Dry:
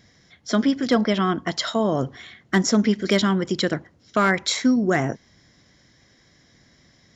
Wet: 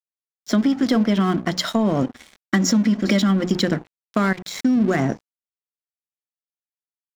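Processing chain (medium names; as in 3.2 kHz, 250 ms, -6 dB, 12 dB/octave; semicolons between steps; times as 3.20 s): peaking EQ 210 Hz +8.5 dB 1 oct; hum notches 60/120/180/240/300/360/420/480 Hz; 2.02–3.46 s: comb 3.6 ms, depth 62%; 4.18–4.82 s: level held to a coarse grid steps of 16 dB; peak limiter -9 dBFS, peak gain reduction 7.5 dB; compression, threshold -17 dBFS, peak gain reduction 6 dB; crossover distortion -37.5 dBFS; trim +3.5 dB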